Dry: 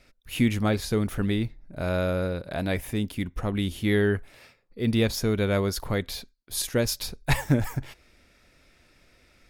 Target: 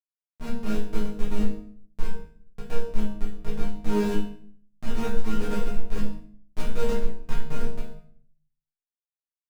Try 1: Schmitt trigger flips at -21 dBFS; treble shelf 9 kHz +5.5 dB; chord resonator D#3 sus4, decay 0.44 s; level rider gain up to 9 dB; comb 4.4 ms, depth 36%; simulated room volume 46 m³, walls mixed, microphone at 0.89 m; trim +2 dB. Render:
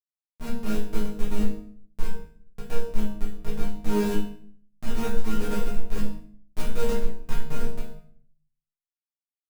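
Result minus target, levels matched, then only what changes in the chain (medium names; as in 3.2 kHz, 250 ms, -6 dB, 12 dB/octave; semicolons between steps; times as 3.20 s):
8 kHz band +3.5 dB
change: treble shelf 9 kHz -4 dB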